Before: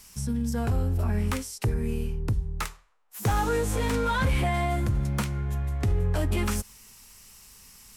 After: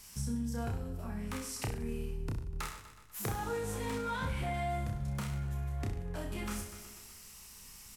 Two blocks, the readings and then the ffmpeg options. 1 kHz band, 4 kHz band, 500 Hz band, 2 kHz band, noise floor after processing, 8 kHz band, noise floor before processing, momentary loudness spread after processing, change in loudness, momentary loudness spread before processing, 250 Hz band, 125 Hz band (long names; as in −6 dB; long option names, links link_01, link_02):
−9.0 dB, −8.0 dB, −9.0 dB, −9.5 dB, −53 dBFS, −6.0 dB, −53 dBFS, 13 LU, −10.0 dB, 6 LU, −9.0 dB, −11.0 dB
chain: -filter_complex "[0:a]asplit=2[link_01][link_02];[link_02]aecho=0:1:123|246|369|492|615|738:0.141|0.0833|0.0492|0.029|0.0171|0.0101[link_03];[link_01][link_03]amix=inputs=2:normalize=0,acompressor=threshold=-32dB:ratio=6,asplit=2[link_04][link_05];[link_05]aecho=0:1:30|63|99.3|139.2|183.2:0.631|0.398|0.251|0.158|0.1[link_06];[link_04][link_06]amix=inputs=2:normalize=0,volume=-3.5dB"